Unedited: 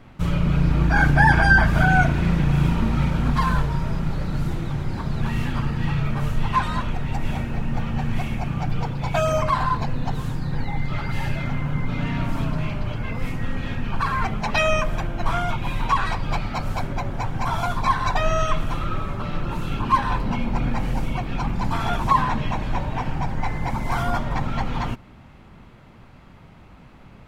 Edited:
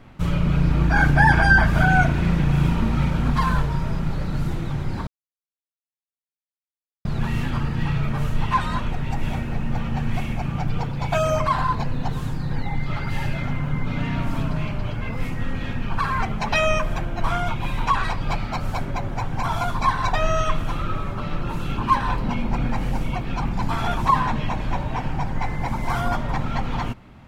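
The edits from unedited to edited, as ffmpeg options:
ffmpeg -i in.wav -filter_complex "[0:a]asplit=2[link_01][link_02];[link_01]atrim=end=5.07,asetpts=PTS-STARTPTS,afade=type=out:start_time=5.066:duration=0.004:curve=hsin,apad=pad_dur=1.98[link_03];[link_02]atrim=start=5.07,asetpts=PTS-STARTPTS,afade=type=in:duration=0.004:curve=hsin[link_04];[link_03][link_04]concat=n=2:v=0:a=1" out.wav

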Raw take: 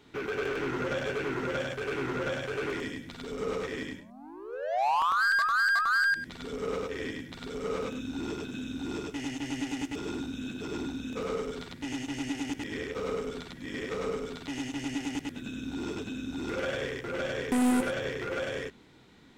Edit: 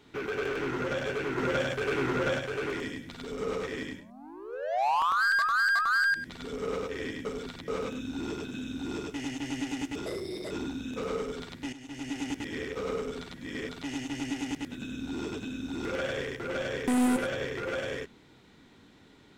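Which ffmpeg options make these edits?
ffmpeg -i in.wav -filter_complex "[0:a]asplit=9[link_01][link_02][link_03][link_04][link_05][link_06][link_07][link_08][link_09];[link_01]atrim=end=1.382[link_10];[link_02]atrim=start=1.378:end=2.392,asetpts=PTS-STARTPTS,volume=3.5dB[link_11];[link_03]atrim=start=2.388:end=7.252[link_12];[link_04]atrim=start=7.248:end=7.682,asetpts=PTS-STARTPTS,areverse[link_13];[link_05]atrim=start=7.678:end=10.064[link_14];[link_06]atrim=start=10.06:end=10.7,asetpts=PTS-STARTPTS,asetrate=63063,aresample=44100,atrim=end_sample=19737,asetpts=PTS-STARTPTS[link_15];[link_07]atrim=start=10.696:end=11.92,asetpts=PTS-STARTPTS,afade=type=out:start_time=1.22:duration=0.004:curve=hsin:silence=0.16788[link_16];[link_08]atrim=start=11.92:end=13.882,asetpts=PTS-STARTPTS,afade=type=in:duration=0.51:silence=0.16788[link_17];[link_09]atrim=start=14.328[link_18];[link_10][link_11]acrossfade=duration=0.004:curve1=hsin:curve2=hsin[link_19];[link_19][link_12]acrossfade=duration=0.004:curve1=hsin:curve2=hsin[link_20];[link_20][link_13]acrossfade=duration=0.004:curve1=hsin:curve2=hsin[link_21];[link_21][link_14]acrossfade=duration=0.004:curve1=hsin:curve2=hsin[link_22];[link_22][link_15]acrossfade=duration=0.004:curve1=hsin:curve2=hsin[link_23];[link_16][link_17]concat=n=2:v=0:a=1[link_24];[link_23][link_24]acrossfade=duration=0.004:curve1=hsin:curve2=hsin[link_25];[link_25][link_18]acrossfade=duration=0.004:curve1=hsin:curve2=hsin" out.wav

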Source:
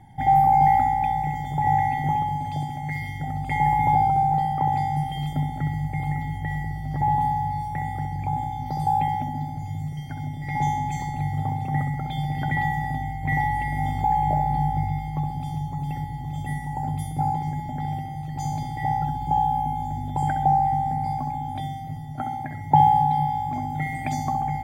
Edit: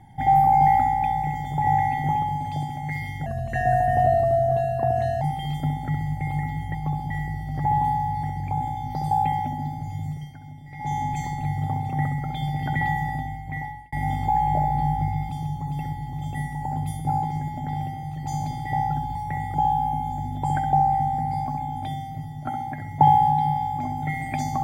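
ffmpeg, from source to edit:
ffmpeg -i in.wav -filter_complex "[0:a]asplit=12[link_01][link_02][link_03][link_04][link_05][link_06][link_07][link_08][link_09][link_10][link_11][link_12];[link_01]atrim=end=3.264[link_13];[link_02]atrim=start=3.26:end=4.94,asetpts=PTS-STARTPTS,asetrate=37926,aresample=44100[link_14];[link_03]atrim=start=4.936:end=6.472[link_15];[link_04]atrim=start=15.048:end=15.412[link_16];[link_05]atrim=start=6.468:end=7.602[link_17];[link_06]atrim=start=7.988:end=10.12,asetpts=PTS-STARTPTS,afade=type=out:start_time=1.892:duration=0.24:silence=0.316228[link_18];[link_07]atrim=start=10.12:end=10.55,asetpts=PTS-STARTPTS,volume=-10dB[link_19];[link_08]atrim=start=10.55:end=13.68,asetpts=PTS-STARTPTS,afade=type=in:duration=0.24:silence=0.316228,afade=type=out:start_time=2.28:duration=0.85[link_20];[link_09]atrim=start=13.68:end=15.052,asetpts=PTS-STARTPTS,afade=type=in:duration=0.004:curve=hsin[link_21];[link_10]atrim=start=15.408:end=19.272[link_22];[link_11]atrim=start=7.598:end=7.992[link_23];[link_12]atrim=start=19.268[link_24];[link_13][link_14]acrossfade=duration=0.004:curve1=hsin:curve2=hsin[link_25];[link_25][link_15]acrossfade=duration=0.004:curve1=hsin:curve2=hsin[link_26];[link_26][link_16]acrossfade=duration=0.004:curve1=hsin:curve2=hsin[link_27];[link_27][link_17]acrossfade=duration=0.004:curve1=hsin:curve2=hsin[link_28];[link_18][link_19][link_20][link_21]concat=n=4:v=0:a=1[link_29];[link_28][link_29]acrossfade=duration=0.004:curve1=hsin:curve2=hsin[link_30];[link_30][link_22]acrossfade=duration=0.004:curve1=hsin:curve2=hsin[link_31];[link_31][link_23]acrossfade=duration=0.004:curve1=hsin:curve2=hsin[link_32];[link_32][link_24]acrossfade=duration=0.004:curve1=hsin:curve2=hsin" out.wav

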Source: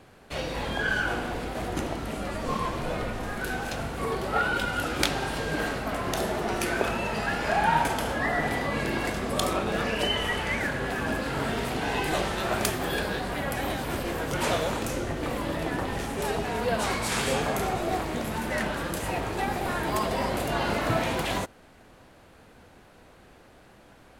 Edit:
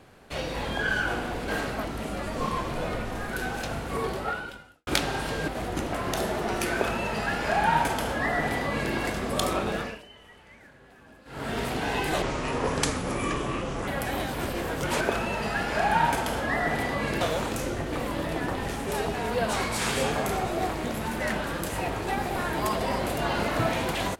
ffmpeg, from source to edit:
ffmpeg -i in.wav -filter_complex "[0:a]asplit=12[link_01][link_02][link_03][link_04][link_05][link_06][link_07][link_08][link_09][link_10][link_11][link_12];[link_01]atrim=end=1.482[link_13];[link_02]atrim=start=5.558:end=5.932[link_14];[link_03]atrim=start=1.928:end=4.95,asetpts=PTS-STARTPTS,afade=type=out:start_time=2.262:duration=0.76:curve=qua[link_15];[link_04]atrim=start=4.95:end=5.562,asetpts=PTS-STARTPTS,afade=type=in:duration=0.004:curve=hsin[link_16];[link_05]atrim=start=1.478:end=1.932[link_17];[link_06]atrim=start=5.928:end=10.02,asetpts=PTS-STARTPTS,afade=type=out:start_time=3.752:duration=0.34:silence=0.0668344[link_18];[link_07]atrim=start=10.02:end=11.25,asetpts=PTS-STARTPTS,volume=-23.5dB[link_19];[link_08]atrim=start=11.25:end=12.224,asetpts=PTS-STARTPTS,afade=type=in:duration=0.34:silence=0.0668344[link_20];[link_09]atrim=start=12.22:end=13.38,asetpts=PTS-STARTPTS,asetrate=30870,aresample=44100[link_21];[link_10]atrim=start=13.376:end=14.512[link_22];[link_11]atrim=start=6.728:end=8.932[link_23];[link_12]atrim=start=14.508[link_24];[link_13][link_14]acrossfade=duration=0.004:curve1=hsin:curve2=hsin[link_25];[link_15][link_16]concat=n=2:v=0:a=1[link_26];[link_25][link_26]acrossfade=duration=0.004:curve1=hsin:curve2=hsin[link_27];[link_27][link_17]acrossfade=duration=0.004:curve1=hsin:curve2=hsin[link_28];[link_18][link_19][link_20]concat=n=3:v=0:a=1[link_29];[link_28][link_29]acrossfade=duration=0.004:curve1=hsin:curve2=hsin[link_30];[link_30][link_21]acrossfade=duration=0.004:curve1=hsin:curve2=hsin[link_31];[link_31][link_22]acrossfade=duration=0.004:curve1=hsin:curve2=hsin[link_32];[link_32][link_23]acrossfade=duration=0.004:curve1=hsin:curve2=hsin[link_33];[link_33][link_24]acrossfade=duration=0.004:curve1=hsin:curve2=hsin" out.wav

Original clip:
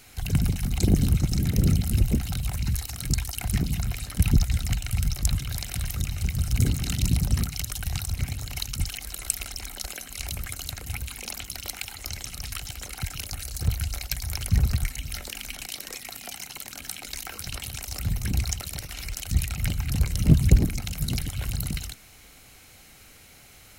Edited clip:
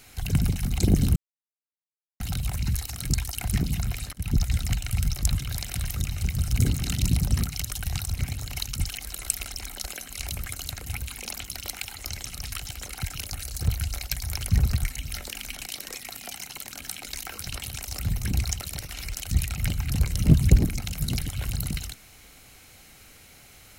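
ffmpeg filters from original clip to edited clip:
ffmpeg -i in.wav -filter_complex "[0:a]asplit=4[link_01][link_02][link_03][link_04];[link_01]atrim=end=1.16,asetpts=PTS-STARTPTS,afade=type=out:start_time=1.156:duration=0.004:curve=hsin[link_05];[link_02]atrim=start=1.16:end=2.2,asetpts=PTS-STARTPTS,volume=0[link_06];[link_03]atrim=start=2.2:end=4.13,asetpts=PTS-STARTPTS,afade=type=in:duration=0.004:curve=hsin,afade=type=out:start_time=1.926:duration=0.004:curve=hsin:silence=0.0668344[link_07];[link_04]atrim=start=4.13,asetpts=PTS-STARTPTS,afade=type=in:duration=0.35:silence=0.0668344[link_08];[link_05][link_06][link_07][link_08]concat=n=4:v=0:a=1" out.wav

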